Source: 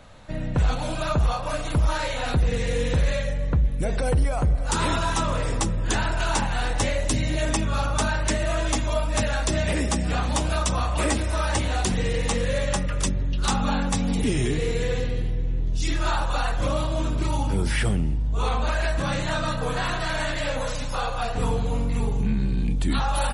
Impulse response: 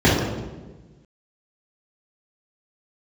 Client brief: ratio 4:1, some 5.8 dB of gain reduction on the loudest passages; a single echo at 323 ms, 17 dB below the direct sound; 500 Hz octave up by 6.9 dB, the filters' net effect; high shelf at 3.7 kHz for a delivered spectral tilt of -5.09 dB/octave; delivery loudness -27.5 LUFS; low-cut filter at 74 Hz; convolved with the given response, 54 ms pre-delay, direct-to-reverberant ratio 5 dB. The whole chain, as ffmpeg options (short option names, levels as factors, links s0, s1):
-filter_complex "[0:a]highpass=74,equalizer=f=500:t=o:g=8,highshelf=f=3700:g=9,acompressor=threshold=0.0708:ratio=4,aecho=1:1:323:0.141,asplit=2[s0][s1];[1:a]atrim=start_sample=2205,adelay=54[s2];[s1][s2]afir=irnorm=-1:irlink=0,volume=0.0355[s3];[s0][s3]amix=inputs=2:normalize=0,volume=0.631"